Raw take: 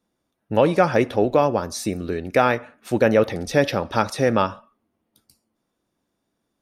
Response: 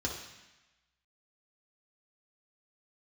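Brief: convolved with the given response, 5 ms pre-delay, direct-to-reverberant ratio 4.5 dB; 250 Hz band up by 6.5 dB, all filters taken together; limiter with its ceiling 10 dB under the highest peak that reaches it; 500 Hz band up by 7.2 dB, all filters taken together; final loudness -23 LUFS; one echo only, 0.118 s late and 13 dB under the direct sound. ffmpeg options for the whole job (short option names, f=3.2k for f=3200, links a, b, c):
-filter_complex "[0:a]equalizer=f=250:t=o:g=6,equalizer=f=500:t=o:g=7,alimiter=limit=-8.5dB:level=0:latency=1,aecho=1:1:118:0.224,asplit=2[a][b];[1:a]atrim=start_sample=2205,adelay=5[c];[b][c]afir=irnorm=-1:irlink=0,volume=-9dB[d];[a][d]amix=inputs=2:normalize=0,volume=-5dB"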